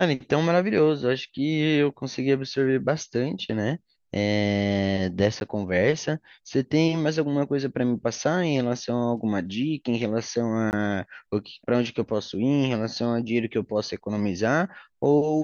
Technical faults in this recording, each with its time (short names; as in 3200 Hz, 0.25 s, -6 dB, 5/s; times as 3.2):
5.4–5.41 gap
10.71–10.73 gap 19 ms